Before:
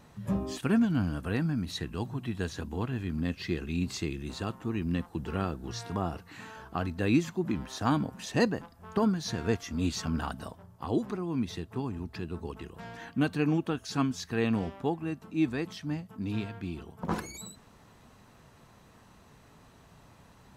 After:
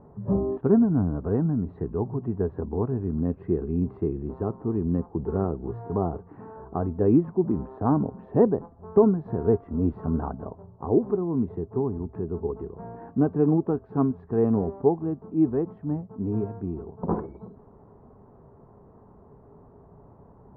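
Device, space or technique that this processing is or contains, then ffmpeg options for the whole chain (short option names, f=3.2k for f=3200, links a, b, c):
under water: -af "lowpass=f=980:w=0.5412,lowpass=f=980:w=1.3066,equalizer=f=410:t=o:w=0.2:g=11,volume=5dB"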